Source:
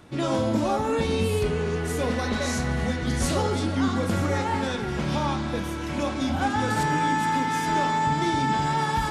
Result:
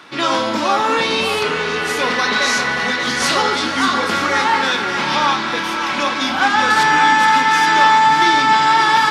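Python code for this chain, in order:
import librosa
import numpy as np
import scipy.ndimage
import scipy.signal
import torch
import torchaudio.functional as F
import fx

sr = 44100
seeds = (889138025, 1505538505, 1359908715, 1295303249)

p1 = scipy.signal.sosfilt(scipy.signal.butter(2, 260.0, 'highpass', fs=sr, output='sos'), x)
p2 = fx.band_shelf(p1, sr, hz=2300.0, db=11.0, octaves=2.9)
p3 = p2 + fx.echo_feedback(p2, sr, ms=578, feedback_pct=43, wet_db=-10.0, dry=0)
y = p3 * librosa.db_to_amplitude(4.5)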